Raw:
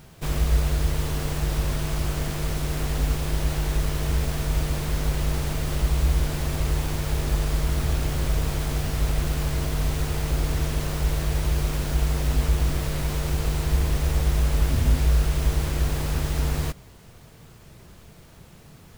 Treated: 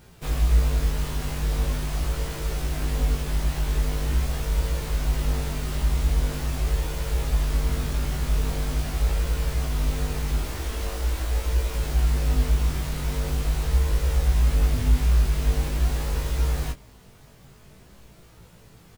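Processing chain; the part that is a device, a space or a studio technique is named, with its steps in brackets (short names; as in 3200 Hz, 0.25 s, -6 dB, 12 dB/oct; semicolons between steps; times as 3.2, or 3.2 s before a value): 10.38–11.75 notches 50/100/150/200/250 Hz; double-tracked vocal (doubler 16 ms -6 dB; chorus 0.43 Hz, delay 18 ms, depth 3 ms)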